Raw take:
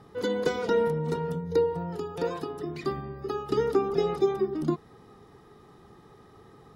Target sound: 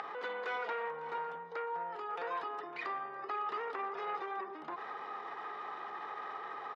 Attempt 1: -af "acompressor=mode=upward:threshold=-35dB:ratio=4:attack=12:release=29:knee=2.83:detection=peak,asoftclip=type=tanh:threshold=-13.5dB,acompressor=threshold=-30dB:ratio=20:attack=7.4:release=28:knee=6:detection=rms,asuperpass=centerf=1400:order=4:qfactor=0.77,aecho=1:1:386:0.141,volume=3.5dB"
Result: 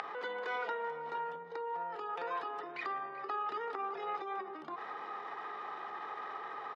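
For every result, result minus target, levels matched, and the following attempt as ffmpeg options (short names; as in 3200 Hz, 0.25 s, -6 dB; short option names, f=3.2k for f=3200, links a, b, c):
soft clip: distortion -14 dB; echo 0.168 s early
-af "acompressor=mode=upward:threshold=-35dB:ratio=4:attack=12:release=29:knee=2.83:detection=peak,asoftclip=type=tanh:threshold=-25dB,acompressor=threshold=-30dB:ratio=20:attack=7.4:release=28:knee=6:detection=rms,asuperpass=centerf=1400:order=4:qfactor=0.77,aecho=1:1:386:0.141,volume=3.5dB"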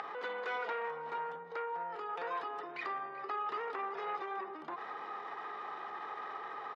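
echo 0.168 s early
-af "acompressor=mode=upward:threshold=-35dB:ratio=4:attack=12:release=29:knee=2.83:detection=peak,asoftclip=type=tanh:threshold=-25dB,acompressor=threshold=-30dB:ratio=20:attack=7.4:release=28:knee=6:detection=rms,asuperpass=centerf=1400:order=4:qfactor=0.77,aecho=1:1:554:0.141,volume=3.5dB"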